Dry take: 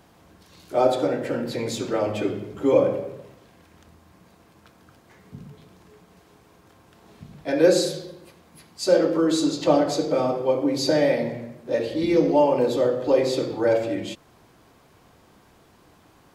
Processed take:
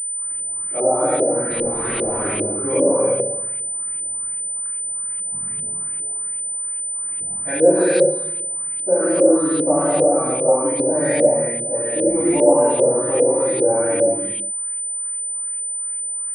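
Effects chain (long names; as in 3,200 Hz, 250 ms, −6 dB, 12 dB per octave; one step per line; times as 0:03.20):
0:01.50–0:02.18: sign of each sample alone
0:07.34–0:07.96: high-shelf EQ 2,700 Hz +10.5 dB
bit reduction 8 bits
reverb whose tail is shaped and stops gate 380 ms flat, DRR −6.5 dB
auto-filter low-pass saw up 2.5 Hz 450–2,900 Hz
switching amplifier with a slow clock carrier 9,000 Hz
level −7 dB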